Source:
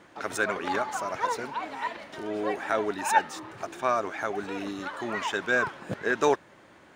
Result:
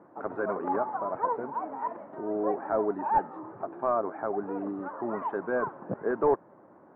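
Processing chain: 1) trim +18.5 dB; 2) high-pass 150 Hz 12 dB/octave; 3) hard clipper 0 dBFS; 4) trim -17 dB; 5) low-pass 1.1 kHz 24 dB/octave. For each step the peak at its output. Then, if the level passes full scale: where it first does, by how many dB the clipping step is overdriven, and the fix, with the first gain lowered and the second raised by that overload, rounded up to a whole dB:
+9.5 dBFS, +9.5 dBFS, 0.0 dBFS, -17.0 dBFS, -15.0 dBFS; step 1, 9.5 dB; step 1 +8.5 dB, step 4 -7 dB

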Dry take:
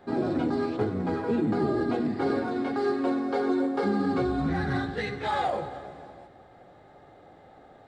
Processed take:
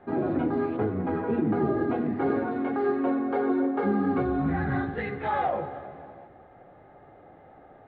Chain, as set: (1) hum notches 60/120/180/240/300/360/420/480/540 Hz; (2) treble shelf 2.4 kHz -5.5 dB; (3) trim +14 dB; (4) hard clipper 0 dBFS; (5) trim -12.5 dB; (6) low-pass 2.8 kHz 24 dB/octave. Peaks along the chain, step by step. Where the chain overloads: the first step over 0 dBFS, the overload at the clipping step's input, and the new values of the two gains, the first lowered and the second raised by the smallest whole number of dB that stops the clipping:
-16.0 dBFS, -16.0 dBFS, -2.0 dBFS, -2.0 dBFS, -14.5 dBFS, -14.5 dBFS; nothing clips

